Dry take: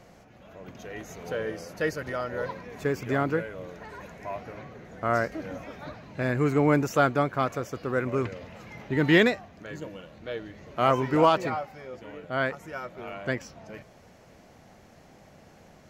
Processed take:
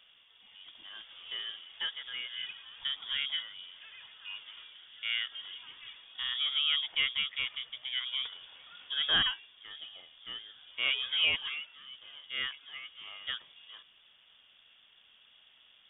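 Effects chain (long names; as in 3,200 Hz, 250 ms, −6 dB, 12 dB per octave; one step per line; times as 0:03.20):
voice inversion scrambler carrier 3,500 Hz
level −8.5 dB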